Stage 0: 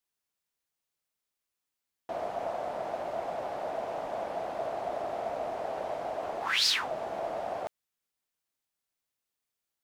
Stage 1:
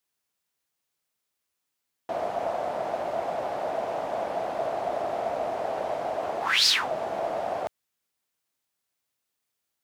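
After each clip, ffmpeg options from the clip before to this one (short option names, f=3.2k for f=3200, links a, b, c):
-af "highpass=58,volume=5dB"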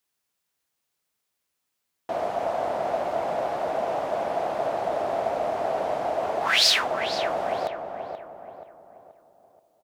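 -filter_complex "[0:a]asplit=2[a][b];[b]adelay=480,lowpass=f=1.8k:p=1,volume=-6.5dB,asplit=2[c][d];[d]adelay=480,lowpass=f=1.8k:p=1,volume=0.44,asplit=2[e][f];[f]adelay=480,lowpass=f=1.8k:p=1,volume=0.44,asplit=2[g][h];[h]adelay=480,lowpass=f=1.8k:p=1,volume=0.44,asplit=2[i][j];[j]adelay=480,lowpass=f=1.8k:p=1,volume=0.44[k];[a][c][e][g][i][k]amix=inputs=6:normalize=0,volume=2dB"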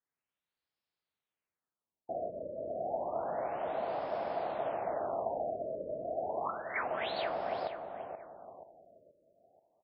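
-af "afftfilt=real='re*lt(b*sr/1024,640*pow(5500/640,0.5+0.5*sin(2*PI*0.3*pts/sr)))':imag='im*lt(b*sr/1024,640*pow(5500/640,0.5+0.5*sin(2*PI*0.3*pts/sr)))':win_size=1024:overlap=0.75,volume=-8.5dB"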